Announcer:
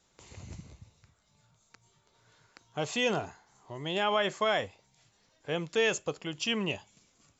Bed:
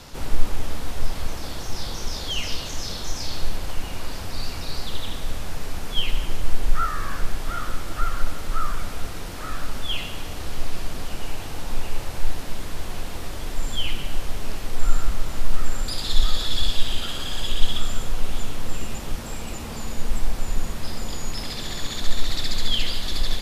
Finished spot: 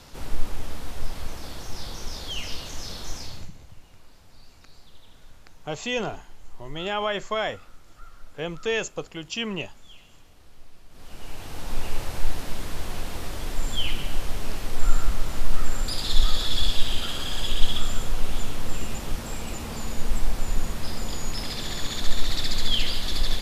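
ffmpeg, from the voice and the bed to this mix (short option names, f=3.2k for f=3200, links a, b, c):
-filter_complex "[0:a]adelay=2900,volume=1dB[a];[1:a]volume=16.5dB,afade=t=out:st=3.13:d=0.37:silence=0.141254,afade=t=in:st=10.89:d=1:silence=0.0841395[b];[a][b]amix=inputs=2:normalize=0"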